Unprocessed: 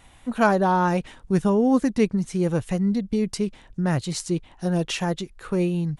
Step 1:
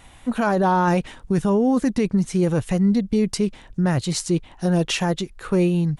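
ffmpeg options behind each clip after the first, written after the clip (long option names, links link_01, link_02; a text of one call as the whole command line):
ffmpeg -i in.wav -af "alimiter=limit=-16dB:level=0:latency=1:release=11,volume=4.5dB" out.wav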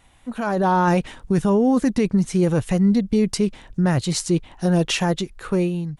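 ffmpeg -i in.wav -af "dynaudnorm=framelen=150:gausssize=7:maxgain=11.5dB,volume=-8dB" out.wav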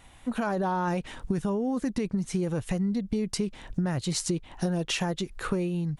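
ffmpeg -i in.wav -af "acompressor=threshold=-27dB:ratio=10,volume=2dB" out.wav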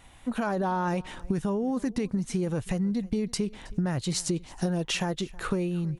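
ffmpeg -i in.wav -af "aecho=1:1:320:0.075" out.wav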